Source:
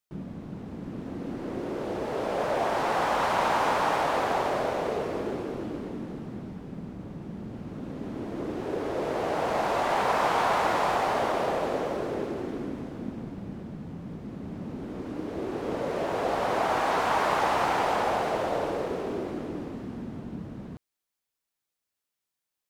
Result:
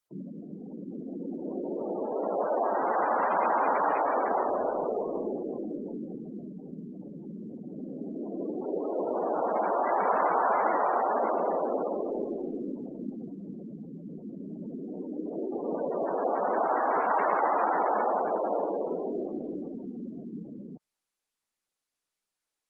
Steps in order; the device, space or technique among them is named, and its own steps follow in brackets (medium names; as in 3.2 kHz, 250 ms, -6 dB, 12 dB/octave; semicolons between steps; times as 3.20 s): 0.43–1.37 s: high-pass 120 Hz 12 dB/octave; noise-suppressed video call (high-pass 180 Hz 24 dB/octave; spectral gate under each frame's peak -15 dB strong; Opus 32 kbps 48 kHz)